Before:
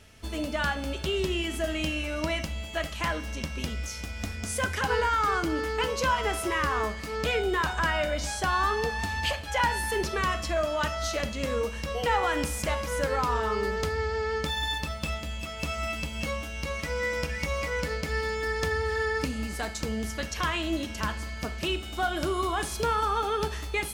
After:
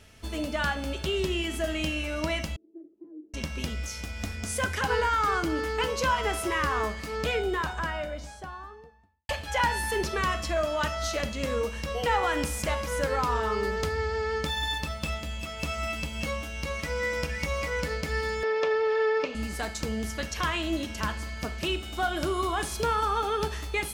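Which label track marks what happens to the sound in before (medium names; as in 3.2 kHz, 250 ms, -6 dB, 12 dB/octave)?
2.560000	3.340000	Butterworth band-pass 340 Hz, Q 5.4
6.970000	9.290000	studio fade out
18.430000	19.350000	cabinet simulation 410–4900 Hz, peaks and dips at 410 Hz +9 dB, 590 Hz +9 dB, 1.1 kHz +5 dB, 1.8 kHz -4 dB, 2.5 kHz +5 dB, 4.5 kHz -5 dB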